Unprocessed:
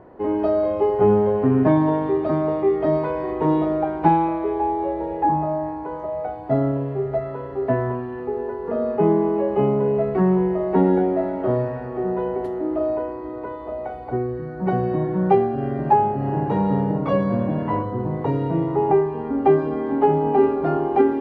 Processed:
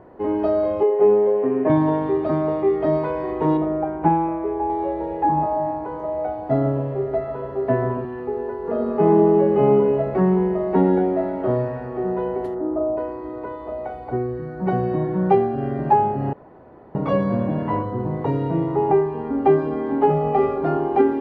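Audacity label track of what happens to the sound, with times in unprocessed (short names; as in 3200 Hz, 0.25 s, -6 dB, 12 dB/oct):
0.830000	1.700000	speaker cabinet 350–2700 Hz, peaks and dips at 450 Hz +6 dB, 840 Hz -4 dB, 1400 Hz -10 dB
3.570000	4.700000	air absorption 490 m
5.230000	8.050000	dark delay 0.139 s, feedback 64%, low-pass 720 Hz, level -6 dB
8.590000	9.720000	reverb throw, RT60 2.7 s, DRR 2.5 dB
12.540000	12.960000	LPF 1700 Hz -> 1100 Hz 24 dB/oct
16.330000	16.950000	room tone
20.100000	20.580000	comb 1.6 ms, depth 77%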